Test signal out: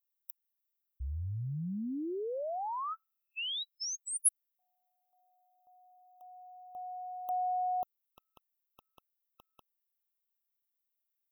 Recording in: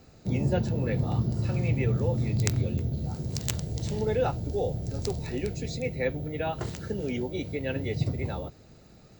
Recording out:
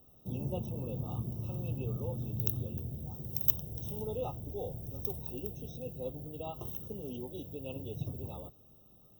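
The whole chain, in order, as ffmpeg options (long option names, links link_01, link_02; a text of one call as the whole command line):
ffmpeg -i in.wav -filter_complex "[0:a]acrossover=split=2200[link_01][link_02];[link_02]aexciter=amount=14.1:drive=4.6:freq=11000[link_03];[link_01][link_03]amix=inputs=2:normalize=0,afftfilt=real='re*eq(mod(floor(b*sr/1024/1300),2),0)':imag='im*eq(mod(floor(b*sr/1024/1300),2),0)':win_size=1024:overlap=0.75,volume=-10.5dB" out.wav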